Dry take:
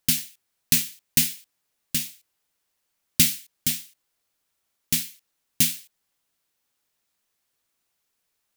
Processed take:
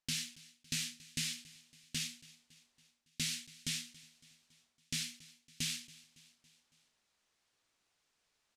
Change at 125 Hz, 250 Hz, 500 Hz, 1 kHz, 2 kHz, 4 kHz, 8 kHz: −12.5 dB, −14.5 dB, −15.5 dB, can't be measured, −9.5 dB, −9.5 dB, −14.5 dB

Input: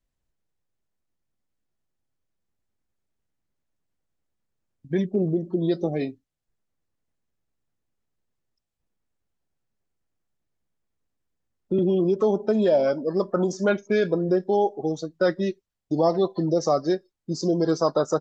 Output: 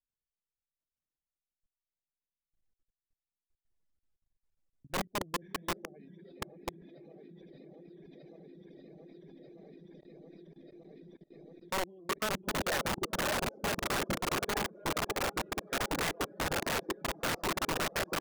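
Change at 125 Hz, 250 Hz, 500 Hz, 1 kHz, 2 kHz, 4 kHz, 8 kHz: −12.5 dB, −15.5 dB, −16.0 dB, −4.5 dB, +2.0 dB, +3.5 dB, can't be measured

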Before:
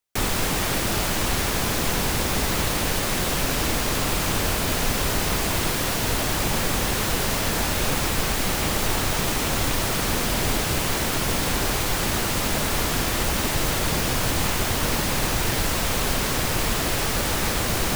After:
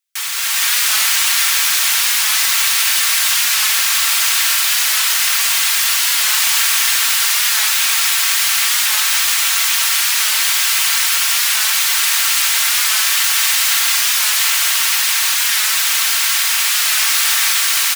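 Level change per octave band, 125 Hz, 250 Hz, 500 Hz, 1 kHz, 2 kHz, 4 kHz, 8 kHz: below −40 dB, below −35 dB, −15.0 dB, +2.5 dB, +10.5 dB, +12.5 dB, +13.0 dB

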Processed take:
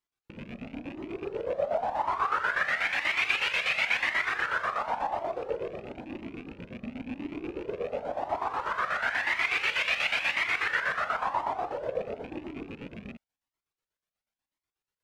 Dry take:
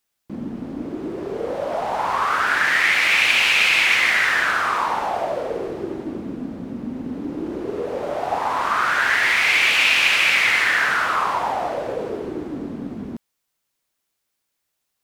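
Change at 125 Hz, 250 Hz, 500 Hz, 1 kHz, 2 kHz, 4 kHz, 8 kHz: −9.0, −11.0, −7.0, −8.5, −11.0, −13.0, −17.5 decibels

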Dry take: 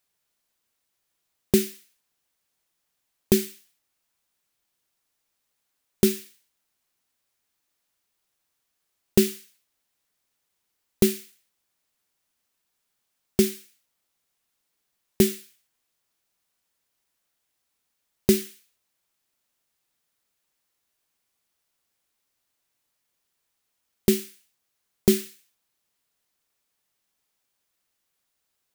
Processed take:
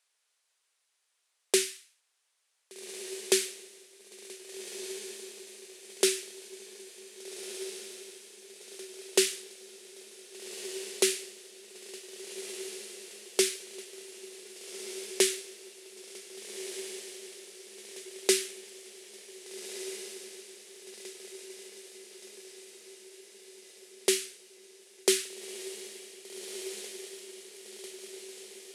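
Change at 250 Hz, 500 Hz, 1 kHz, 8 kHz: −12.5, −4.0, +1.0, +4.0 decibels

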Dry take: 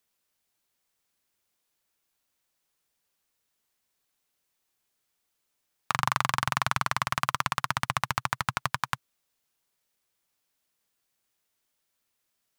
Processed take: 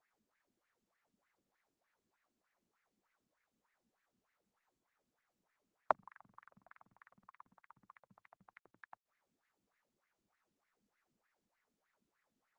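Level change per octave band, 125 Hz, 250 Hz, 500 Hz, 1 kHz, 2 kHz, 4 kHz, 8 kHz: −37.0 dB, −23.5 dB, −5.5 dB, −17.0 dB, −25.0 dB, below −35 dB, below −40 dB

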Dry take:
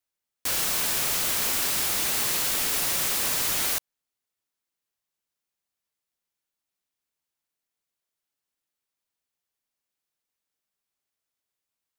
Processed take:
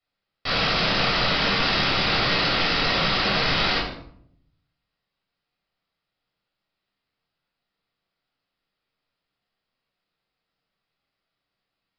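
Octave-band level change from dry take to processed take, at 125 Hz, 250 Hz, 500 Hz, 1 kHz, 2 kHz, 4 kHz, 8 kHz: +14.5, +12.5, +11.0, +10.5, +9.5, +8.0, −20.5 decibels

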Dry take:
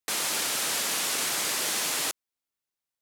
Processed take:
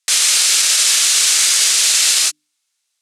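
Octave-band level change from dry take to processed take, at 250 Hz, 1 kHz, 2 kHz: can't be measured, +3.5 dB, +11.5 dB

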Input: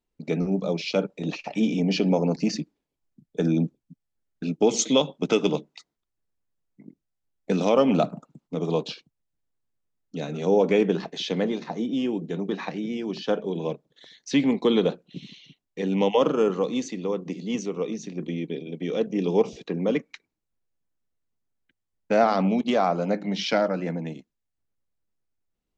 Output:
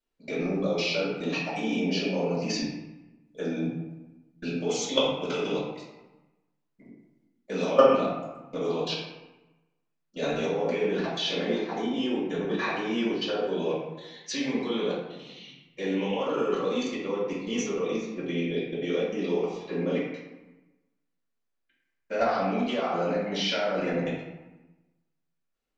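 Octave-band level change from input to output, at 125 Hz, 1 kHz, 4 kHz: −6.0, −2.5, +1.0 decibels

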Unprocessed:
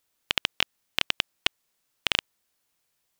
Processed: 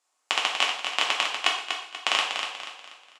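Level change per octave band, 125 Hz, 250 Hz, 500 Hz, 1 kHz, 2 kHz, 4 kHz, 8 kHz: below −15 dB, −3.0 dB, +5.5 dB, +10.5 dB, +4.0 dB, +2.5 dB, +6.5 dB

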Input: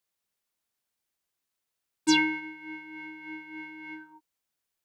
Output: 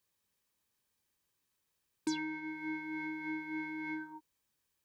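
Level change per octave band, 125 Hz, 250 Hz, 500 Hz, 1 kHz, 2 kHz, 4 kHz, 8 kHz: −5.0 dB, −7.0 dB, can't be measured, −8.5 dB, −8.5 dB, −17.0 dB, −14.5 dB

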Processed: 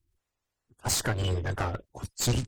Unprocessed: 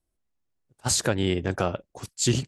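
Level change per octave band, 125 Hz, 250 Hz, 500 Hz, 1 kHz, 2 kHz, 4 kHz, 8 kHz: −0.5, −8.0, −7.5, −2.0, −2.5, −3.5, −4.0 decibels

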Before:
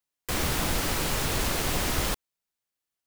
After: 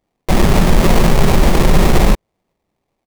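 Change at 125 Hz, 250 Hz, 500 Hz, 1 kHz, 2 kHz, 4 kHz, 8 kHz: +18.0, +19.0, +17.0, +13.5, +9.5, +6.5, +4.0 decibels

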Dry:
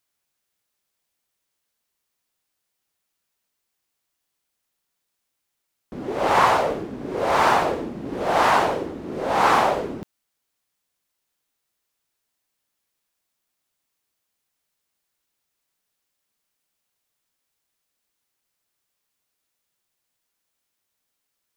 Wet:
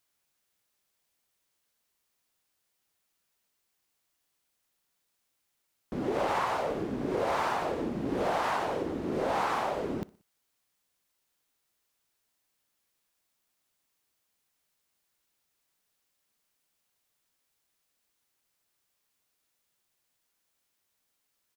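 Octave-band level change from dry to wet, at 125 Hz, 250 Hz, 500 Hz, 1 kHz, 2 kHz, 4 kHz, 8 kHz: −5.0, −4.0, −7.5, −11.5, −11.5, −11.0, −11.0 decibels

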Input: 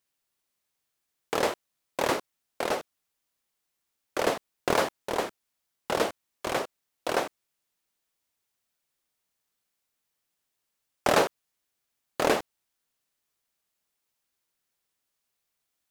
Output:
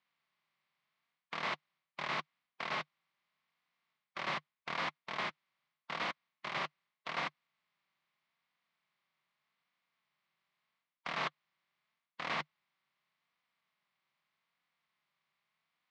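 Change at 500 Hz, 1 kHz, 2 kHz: −19.5, −9.5, −5.5 decibels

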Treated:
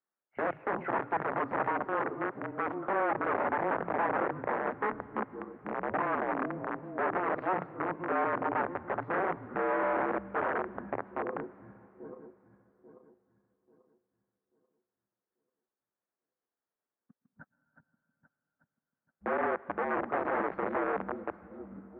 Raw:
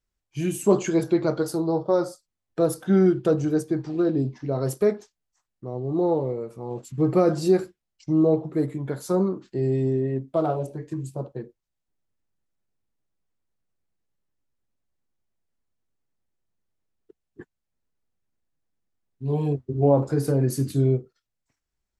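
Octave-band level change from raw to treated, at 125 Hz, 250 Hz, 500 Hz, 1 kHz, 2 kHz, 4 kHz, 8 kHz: −22.0 dB, −14.0 dB, −9.5 dB, +4.5 dB, +9.0 dB, below −10 dB, below −40 dB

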